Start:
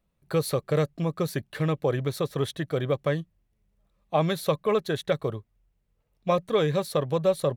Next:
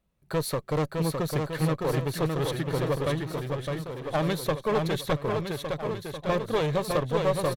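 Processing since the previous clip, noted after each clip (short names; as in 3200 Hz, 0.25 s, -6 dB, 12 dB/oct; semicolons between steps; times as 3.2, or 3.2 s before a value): one-sided clip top -27.5 dBFS; on a send: bouncing-ball echo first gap 0.61 s, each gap 0.9×, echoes 5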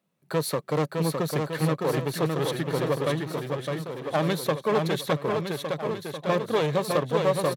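HPF 140 Hz 24 dB/oct; gain +2 dB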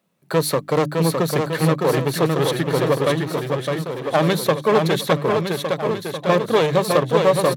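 notches 50/100/150/200/250/300 Hz; gain +7.5 dB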